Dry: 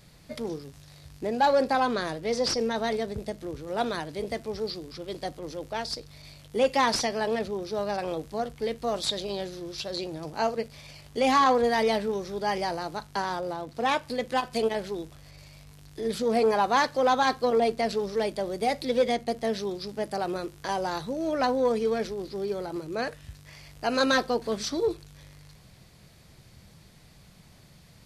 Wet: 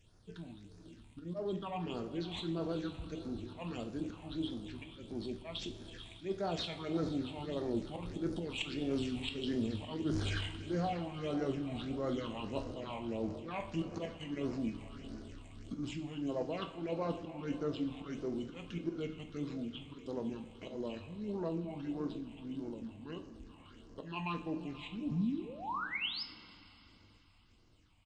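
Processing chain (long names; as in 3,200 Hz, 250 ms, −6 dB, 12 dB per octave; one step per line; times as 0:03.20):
source passing by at 0:10.05, 18 m/s, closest 9.5 metres
volume swells 138 ms
reversed playback
downward compressor 10 to 1, threshold −48 dBFS, peak gain reduction 24.5 dB
reversed playback
feedback delay with all-pass diffusion 472 ms, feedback 56%, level −13 dB
sound drawn into the spectrogram rise, 0:25.11–0:26.22, 200–7,800 Hz −50 dBFS
all-pass phaser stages 6, 1.6 Hz, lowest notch 550–4,400 Hz
pitch shifter −6.5 semitones
coupled-rooms reverb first 0.43 s, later 3.4 s, from −17 dB, DRR 5.5 dB
level +15.5 dB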